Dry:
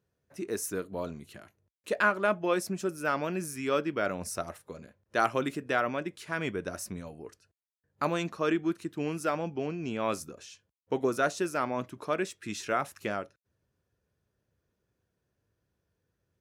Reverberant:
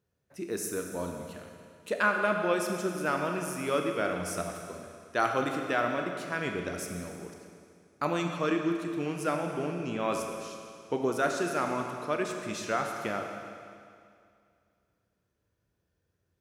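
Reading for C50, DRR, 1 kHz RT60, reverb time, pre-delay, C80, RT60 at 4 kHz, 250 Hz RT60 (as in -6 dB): 4.0 dB, 3.0 dB, 2.3 s, 2.3 s, 23 ms, 5.0 dB, 2.2 s, 2.3 s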